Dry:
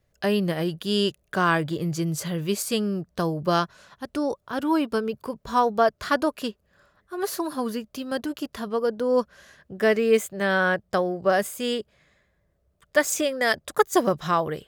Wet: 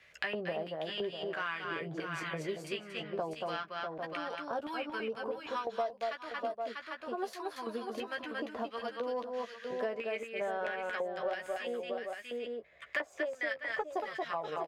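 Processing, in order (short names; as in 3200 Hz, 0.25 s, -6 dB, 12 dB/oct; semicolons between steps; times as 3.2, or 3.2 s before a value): low shelf 95 Hz +10.5 dB; LFO band-pass square 1.5 Hz 670–2300 Hz; in parallel at -10 dB: soft clip -19.5 dBFS, distortion -14 dB; on the sum: doubler 13 ms -6.5 dB; on a send: tapped delay 0.229/0.644/0.796 s -4.5/-10.5/-14 dB; on the sum: three-band squash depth 100%; gain -9 dB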